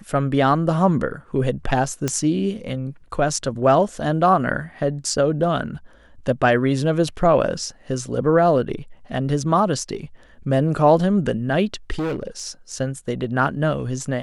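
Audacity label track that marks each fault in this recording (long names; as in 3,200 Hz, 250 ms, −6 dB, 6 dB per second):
2.080000	2.080000	click −8 dBFS
11.930000	12.440000	clipping −21 dBFS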